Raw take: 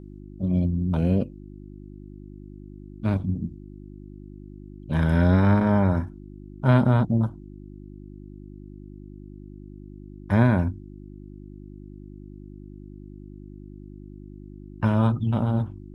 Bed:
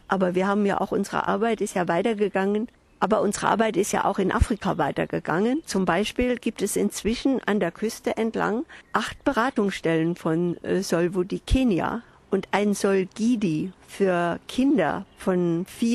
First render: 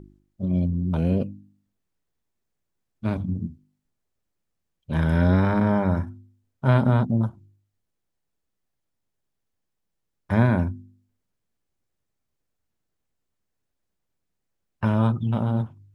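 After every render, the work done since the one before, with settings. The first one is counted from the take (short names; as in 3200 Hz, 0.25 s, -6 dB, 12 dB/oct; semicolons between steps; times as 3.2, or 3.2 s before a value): de-hum 50 Hz, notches 7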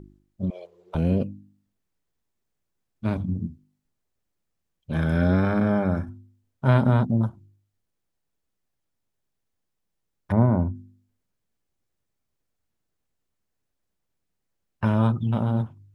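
0.5–0.95 elliptic high-pass 420 Hz; 4.92–6.09 notch comb 950 Hz; 10.32–10.75 polynomial smoothing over 65 samples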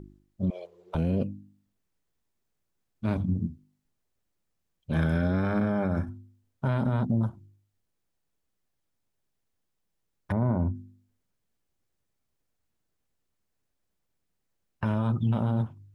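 limiter -17 dBFS, peak gain reduction 10 dB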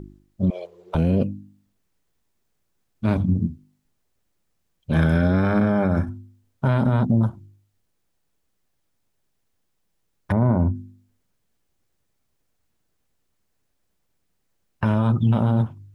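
gain +7 dB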